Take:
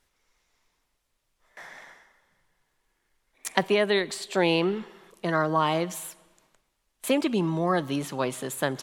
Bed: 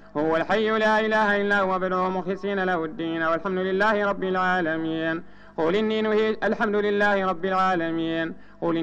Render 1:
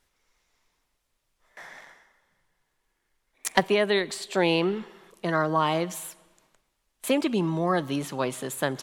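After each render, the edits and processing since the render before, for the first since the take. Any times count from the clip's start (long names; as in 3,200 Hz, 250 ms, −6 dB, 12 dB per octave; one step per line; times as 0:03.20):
0:01.80–0:03.60: leveller curve on the samples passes 1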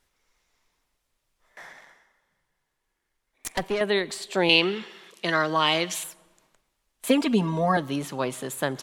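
0:01.72–0:03.81: tube saturation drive 19 dB, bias 0.6
0:04.49–0:06.04: meter weighting curve D
0:07.08–0:07.77: comb filter 4.3 ms, depth 98%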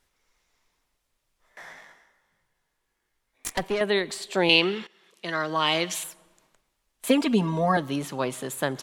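0:01.65–0:03.53: double-tracking delay 19 ms −3.5 dB
0:04.87–0:05.84: fade in, from −17.5 dB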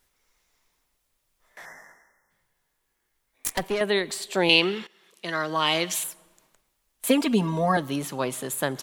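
0:01.66–0:02.30: gain on a spectral selection 2,100–5,100 Hz −24 dB
high-shelf EQ 11,000 Hz +12 dB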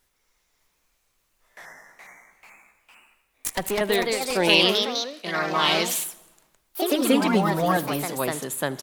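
delay with pitch and tempo change per echo 592 ms, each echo +2 semitones, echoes 3
repeating echo 78 ms, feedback 55%, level −22 dB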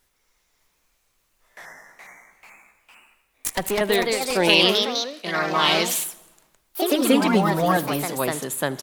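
level +2 dB
brickwall limiter −2 dBFS, peak gain reduction 1.5 dB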